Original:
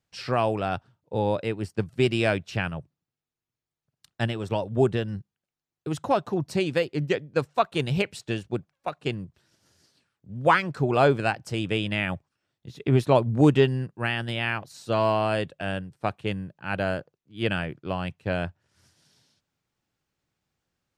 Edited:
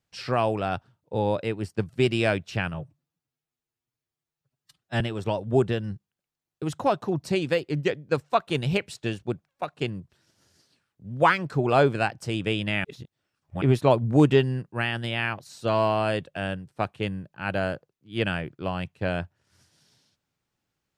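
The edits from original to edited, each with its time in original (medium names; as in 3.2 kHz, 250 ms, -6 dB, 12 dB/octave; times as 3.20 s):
2.74–4.25 s: stretch 1.5×
12.09–12.86 s: reverse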